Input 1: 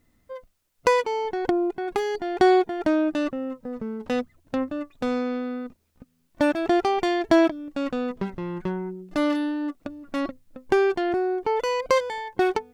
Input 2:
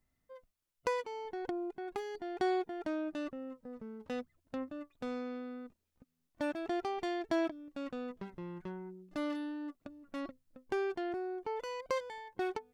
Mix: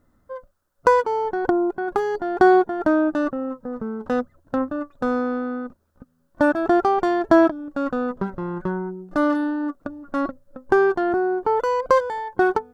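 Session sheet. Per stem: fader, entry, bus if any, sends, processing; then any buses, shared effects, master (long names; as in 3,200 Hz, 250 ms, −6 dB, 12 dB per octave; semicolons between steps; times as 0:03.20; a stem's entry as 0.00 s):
+2.5 dB, 0.00 s, no send, high shelf with overshoot 1,800 Hz −7.5 dB, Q 3
−14.0 dB, 0.00 s, no send, spectral tilt −4 dB per octave; ring modulation 560 Hz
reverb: not used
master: no processing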